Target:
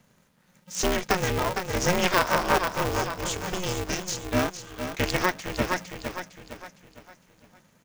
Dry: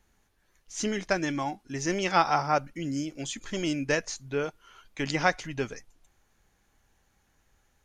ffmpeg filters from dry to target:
ffmpeg -i in.wav -filter_complex "[0:a]asettb=1/sr,asplit=3[link_01][link_02][link_03];[link_01]atrim=end=2.894[link_04];[link_02]atrim=start=2.89:end=4.1,asetpts=PTS-STARTPTS,afade=type=in:duration=0.004:curve=qsin,afade=type=out:start_time=1.206:duration=0.004:curve=qsin,acrossover=split=240|3000[link_05][link_06][link_07];[link_06]acompressor=threshold=-44dB:ratio=6[link_08];[link_05][link_08][link_07]amix=inputs=3:normalize=0[link_09];[link_03]atrim=start=4.096[link_10];[link_04][link_09]acrossfade=duration=0.004:curve1=hsin:curve2=qsin[link_11];[link_11][link_10]acrossfade=duration=0.004:curve1=qsin:curve2=hsin,asplit=2[link_12][link_13];[link_13]aecho=0:1:458|916|1374|1832|2290:0.355|0.145|0.0596|0.0245|0.01[link_14];[link_12][link_14]amix=inputs=2:normalize=0,alimiter=limit=-14.5dB:level=0:latency=1:release=455,aeval=exprs='val(0)*sgn(sin(2*PI*180*n/s))':channel_layout=same,volume=5dB" out.wav

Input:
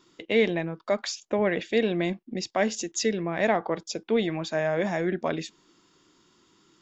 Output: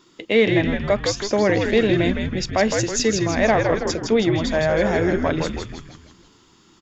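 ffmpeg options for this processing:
ffmpeg -i in.wav -filter_complex "[0:a]asplit=7[link_01][link_02][link_03][link_04][link_05][link_06][link_07];[link_02]adelay=161,afreqshift=-100,volume=-4.5dB[link_08];[link_03]adelay=322,afreqshift=-200,volume=-10.5dB[link_09];[link_04]adelay=483,afreqshift=-300,volume=-16.5dB[link_10];[link_05]adelay=644,afreqshift=-400,volume=-22.6dB[link_11];[link_06]adelay=805,afreqshift=-500,volume=-28.6dB[link_12];[link_07]adelay=966,afreqshift=-600,volume=-34.6dB[link_13];[link_01][link_08][link_09][link_10][link_11][link_12][link_13]amix=inputs=7:normalize=0,acontrast=48" out.wav

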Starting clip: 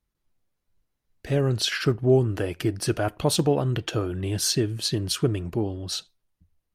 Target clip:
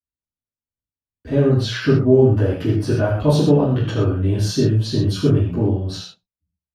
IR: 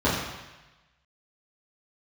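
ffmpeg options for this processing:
-filter_complex "[0:a]bandreject=frequency=60:width_type=h:width=6,bandreject=frequency=120:width_type=h:width=6,bandreject=frequency=180:width_type=h:width=6,agate=range=-25dB:threshold=-45dB:ratio=16:detection=peak[link_01];[1:a]atrim=start_sample=2205,atrim=end_sample=6615[link_02];[link_01][link_02]afir=irnorm=-1:irlink=0,volume=-13dB"

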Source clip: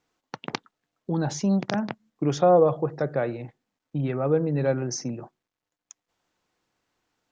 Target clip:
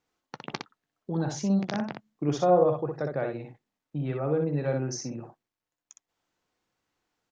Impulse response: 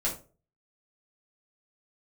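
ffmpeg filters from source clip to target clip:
-af "aecho=1:1:14|61:0.158|0.596,volume=-5dB"

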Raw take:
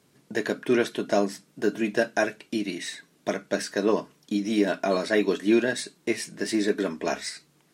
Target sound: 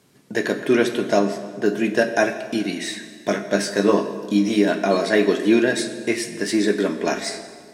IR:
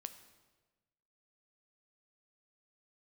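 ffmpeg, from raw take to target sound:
-filter_complex "[0:a]asettb=1/sr,asplit=3[link_01][link_02][link_03];[link_01]atrim=end=1.194[link_04];[link_02]atrim=start=1.19:end=1.66,asetpts=PTS-STARTPTS,afade=type=in:duration=0.004:curve=qsin,afade=type=out:start_time=0.466:duration=0.004:curve=qsin,lowpass=frequency=3800:poles=1[link_05];[link_03]atrim=start=1.656[link_06];[link_04][link_05]acrossfade=duration=0.004:curve1=hsin:curve2=qsin[link_07];[link_07][link_06]acrossfade=duration=0.004:curve1=qsin:curve2=hsin,asettb=1/sr,asplit=3[link_08][link_09][link_10];[link_08]atrim=end=2.884[link_11];[link_09]atrim=start=2.88:end=4.56,asetpts=PTS-STARTPTS,afade=type=in:duration=0.004:curve=qsin,afade=type=out:start_time=1.676:duration=0.004:curve=qsin,asplit=2[link_12][link_13];[link_13]adelay=20,volume=-5dB[link_14];[link_12][link_14]amix=inputs=2:normalize=0,atrim=end_sample=74088[link_15];[link_10]atrim=start=4.556[link_16];[link_11][link_15]acrossfade=duration=0.004:curve1=hsin:curve2=qsin[link_17];[link_17][link_16]acrossfade=duration=0.004:curve1=qsin:curve2=hsin[link_18];[1:a]atrim=start_sample=2205,asetrate=29988,aresample=44100[link_19];[link_18][link_19]afir=irnorm=-1:irlink=0,volume=7.5dB"

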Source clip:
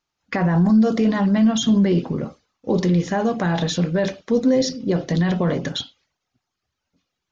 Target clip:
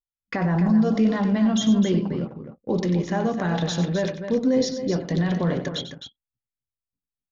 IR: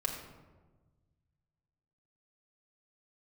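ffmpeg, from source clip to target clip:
-af "anlmdn=6.31,aecho=1:1:93.29|259.5:0.282|0.355,volume=-4dB"

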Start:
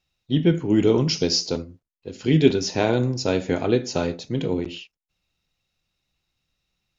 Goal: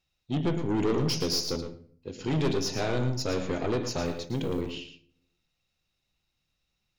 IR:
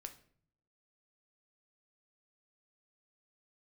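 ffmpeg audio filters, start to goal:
-filter_complex "[0:a]aeval=exprs='(tanh(11.2*val(0)+0.3)-tanh(0.3))/11.2':channel_layout=same,asettb=1/sr,asplit=3[link_01][link_02][link_03];[link_01]atrim=end=4.054[link_04];[link_02]atrim=start=4.05:end=4.61,asetpts=PTS-STARTPTS,afade=type=in:duration=0.004:curve=qsin,afade=type=out:start_time=0.556:duration=0.004:curve=qsin,acrusher=bits=8:mode=log:mix=0:aa=0.000001[link_05];[link_03]atrim=start=4.606[link_06];[link_04][link_05]acrossfade=duration=0.004:curve1=hsin:curve2=qsin[link_07];[link_07][link_06]acrossfade=duration=0.004:curve1=qsin:curve2=hsin,asplit=2[link_08][link_09];[1:a]atrim=start_sample=2205,adelay=112[link_10];[link_09][link_10]afir=irnorm=-1:irlink=0,volume=-3.5dB[link_11];[link_08][link_11]amix=inputs=2:normalize=0,volume=-2.5dB"

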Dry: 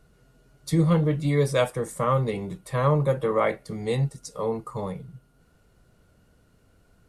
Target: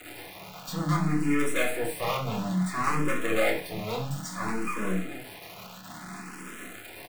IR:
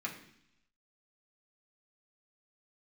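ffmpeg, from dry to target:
-filter_complex "[0:a]aeval=exprs='val(0)+0.5*0.0141*sgn(val(0))':channel_layout=same,highpass=frequency=150:width=0.5412,highpass=frequency=150:width=1.3066,acrossover=split=490|4800[link_01][link_02][link_03];[link_01]alimiter=limit=-21.5dB:level=0:latency=1:release=109[link_04];[link_04][link_02][link_03]amix=inputs=3:normalize=0,acrusher=bits=4:dc=4:mix=0:aa=0.000001,asoftclip=type=tanh:threshold=-23.5dB,asplit=2[link_05][link_06];[link_06]adelay=27,volume=-6.5dB[link_07];[link_05][link_07]amix=inputs=2:normalize=0[link_08];[1:a]atrim=start_sample=2205,atrim=end_sample=4410[link_09];[link_08][link_09]afir=irnorm=-1:irlink=0,asplit=2[link_10][link_11];[link_11]afreqshift=0.59[link_12];[link_10][link_12]amix=inputs=2:normalize=1,volume=7dB"

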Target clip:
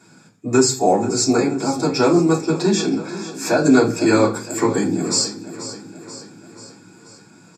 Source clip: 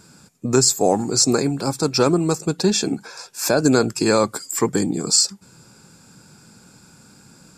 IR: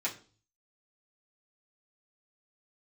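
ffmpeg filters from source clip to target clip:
-filter_complex "[0:a]lowpass=frequency=3800:poles=1,aecho=1:1:484|968|1452|1936|2420|2904:0.2|0.114|0.0648|0.037|0.0211|0.012[link_01];[1:a]atrim=start_sample=2205[link_02];[link_01][link_02]afir=irnorm=-1:irlink=0,volume=-1.5dB"

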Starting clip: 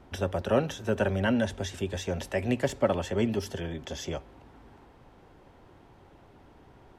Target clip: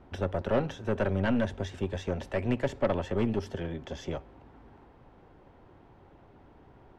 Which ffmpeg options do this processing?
ffmpeg -i in.wav -af "aeval=exprs='0.282*(cos(1*acos(clip(val(0)/0.282,-1,1)))-cos(1*PI/2))+0.02*(cos(5*acos(clip(val(0)/0.282,-1,1)))-cos(5*PI/2))+0.0251*(cos(8*acos(clip(val(0)/0.282,-1,1)))-cos(8*PI/2))':channel_layout=same,aemphasis=mode=reproduction:type=75fm,volume=-4dB" out.wav

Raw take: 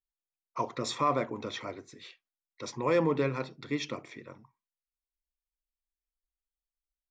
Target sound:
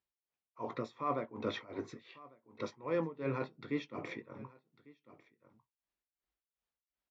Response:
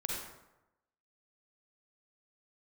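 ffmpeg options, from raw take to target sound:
-filter_complex "[0:a]asplit=2[link_01][link_02];[link_02]adelay=18,volume=-11dB[link_03];[link_01][link_03]amix=inputs=2:normalize=0,areverse,acompressor=threshold=-40dB:ratio=5,areverse,lowpass=4900,aecho=1:1:1149:0.0944,tremolo=f=2.7:d=0.91,highpass=89,highshelf=frequency=3500:gain=-10.5,volume=9dB"

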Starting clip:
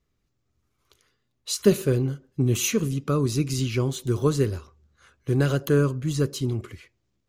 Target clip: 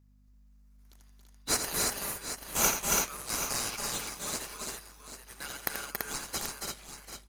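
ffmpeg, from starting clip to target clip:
ffmpeg -i in.wav -filter_complex "[0:a]highpass=990,aderivative,asplit=2[link_01][link_02];[link_02]acrusher=samples=12:mix=1:aa=0.000001,volume=-3dB[link_03];[link_01][link_03]amix=inputs=2:normalize=0,aeval=exprs='val(0)+0.000891*(sin(2*PI*50*n/s)+sin(2*PI*2*50*n/s)/2+sin(2*PI*3*50*n/s)/3+sin(2*PI*4*50*n/s)/4+sin(2*PI*5*50*n/s)/5)':channel_layout=same,aecho=1:1:84|277|282|335|740|783:0.376|0.501|0.398|0.668|0.2|0.316" out.wav

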